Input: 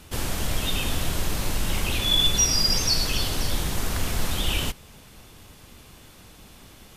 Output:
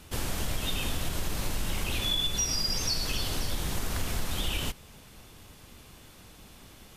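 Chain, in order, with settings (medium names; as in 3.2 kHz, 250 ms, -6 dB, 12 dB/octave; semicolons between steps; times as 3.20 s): compression, threshold -22 dBFS, peak gain reduction 7.5 dB; trim -3 dB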